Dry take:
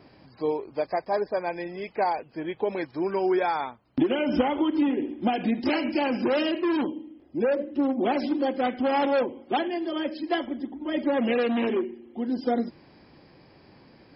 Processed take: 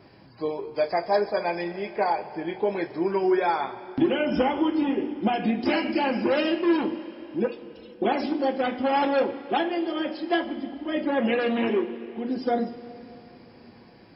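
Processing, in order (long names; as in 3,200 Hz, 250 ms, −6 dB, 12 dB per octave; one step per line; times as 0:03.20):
0:00.76–0:01.68: high-shelf EQ 2,700 Hz +9.5 dB
0:07.46–0:08.02: inverse Chebyshev band-stop filter 300–1,100 Hz, stop band 60 dB
coupled-rooms reverb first 0.21 s, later 3.5 s, from −19 dB, DRR 3.5 dB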